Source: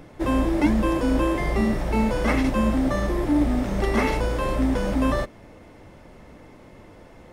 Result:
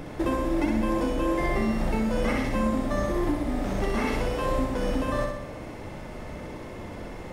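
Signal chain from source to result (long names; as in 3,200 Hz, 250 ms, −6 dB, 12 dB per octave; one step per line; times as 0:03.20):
downward compressor 4 to 1, threshold −33 dBFS, peak gain reduction 15.5 dB
flutter between parallel walls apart 10.8 metres, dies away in 0.91 s
level +6.5 dB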